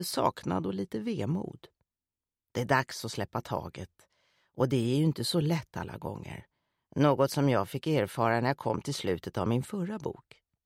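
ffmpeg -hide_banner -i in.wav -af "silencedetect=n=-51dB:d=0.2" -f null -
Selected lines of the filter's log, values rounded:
silence_start: 1.66
silence_end: 2.55 | silence_duration: 0.89
silence_start: 4.02
silence_end: 4.57 | silence_duration: 0.55
silence_start: 6.43
silence_end: 6.92 | silence_duration: 0.50
silence_start: 10.32
silence_end: 10.66 | silence_duration: 0.34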